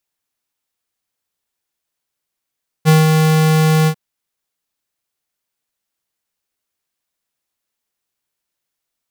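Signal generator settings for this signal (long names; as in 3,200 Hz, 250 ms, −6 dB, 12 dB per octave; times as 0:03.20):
note with an ADSR envelope square 157 Hz, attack 35 ms, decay 175 ms, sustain −4 dB, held 1.02 s, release 75 ms −8 dBFS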